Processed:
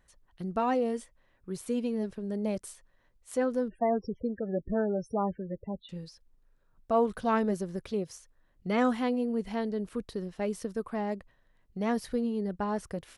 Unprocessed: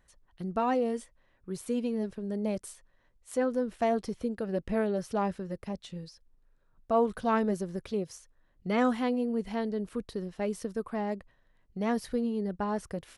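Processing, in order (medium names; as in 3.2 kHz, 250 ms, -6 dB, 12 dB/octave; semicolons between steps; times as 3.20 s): 3.68–5.89 s: loudest bins only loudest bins 16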